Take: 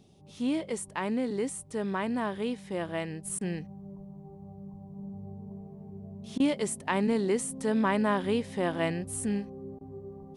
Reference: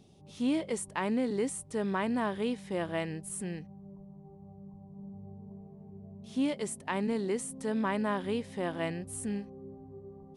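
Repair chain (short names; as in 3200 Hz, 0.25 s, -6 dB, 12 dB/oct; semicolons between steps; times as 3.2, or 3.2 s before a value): interpolate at 3.39/6.38/9.79, 18 ms; gain 0 dB, from 3.25 s -4.5 dB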